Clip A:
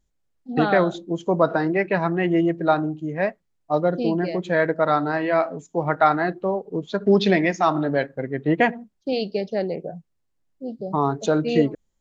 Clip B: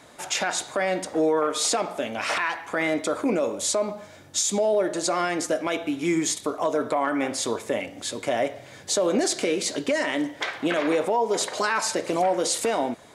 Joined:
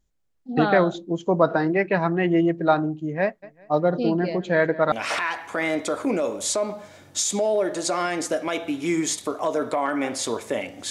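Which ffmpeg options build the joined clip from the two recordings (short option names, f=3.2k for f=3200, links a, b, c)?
-filter_complex "[0:a]asplit=3[a][b][c];[a]afade=t=out:st=3.42:d=0.02[d];[b]aecho=1:1:196|392|588:0.119|0.0368|0.0114,afade=t=in:st=3.42:d=0.02,afade=t=out:st=4.92:d=0.02[e];[c]afade=t=in:st=4.92:d=0.02[f];[d][e][f]amix=inputs=3:normalize=0,apad=whole_dur=10.9,atrim=end=10.9,atrim=end=4.922[g];[1:a]atrim=start=2.108:end=8.09[h];[g][h]acrossfade=d=0.004:c1=hsin:c2=hsin"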